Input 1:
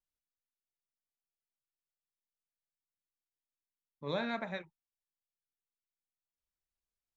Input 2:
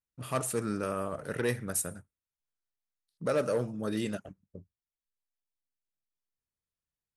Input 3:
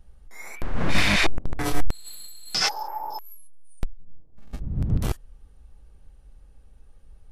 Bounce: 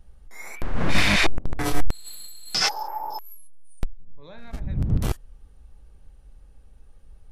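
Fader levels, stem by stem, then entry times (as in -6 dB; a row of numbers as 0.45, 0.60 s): -10.5 dB, off, +1.0 dB; 0.15 s, off, 0.00 s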